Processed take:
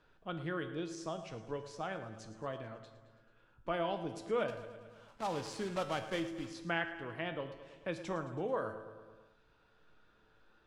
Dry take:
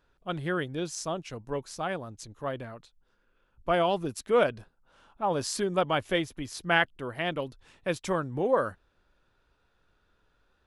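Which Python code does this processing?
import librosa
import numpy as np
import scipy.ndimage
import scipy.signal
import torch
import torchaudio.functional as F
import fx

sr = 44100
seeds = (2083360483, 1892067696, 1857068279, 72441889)

y = fx.block_float(x, sr, bits=3, at=(4.48, 6.5))
y = fx.air_absorb(y, sr, metres=73.0)
y = fx.comb_fb(y, sr, f0_hz=110.0, decay_s=0.55, harmonics='all', damping=0.0, mix_pct=70)
y = fx.echo_feedback(y, sr, ms=109, feedback_pct=56, wet_db=-14.5)
y = fx.room_shoebox(y, sr, seeds[0], volume_m3=2100.0, walls='furnished', distance_m=0.54)
y = fx.band_squash(y, sr, depth_pct=40)
y = y * librosa.db_to_amplitude(-1.0)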